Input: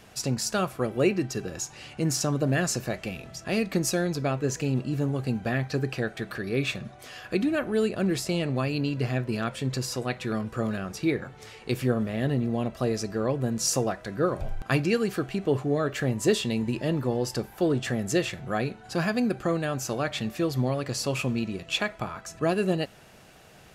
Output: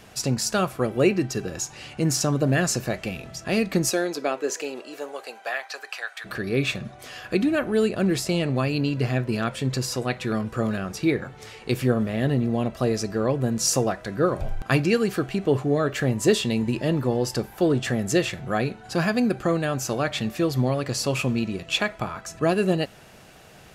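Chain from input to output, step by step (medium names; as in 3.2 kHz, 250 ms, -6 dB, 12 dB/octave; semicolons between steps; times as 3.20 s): 3.89–6.24 s: high-pass 240 Hz -> 950 Hz 24 dB/octave; trim +3.5 dB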